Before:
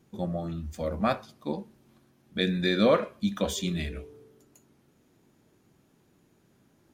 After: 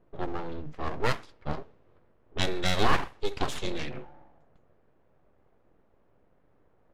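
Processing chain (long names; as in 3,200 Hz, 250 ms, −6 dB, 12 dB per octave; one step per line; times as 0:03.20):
full-wave rectification
low-pass that shuts in the quiet parts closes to 1,500 Hz, open at −22 dBFS
level +1.5 dB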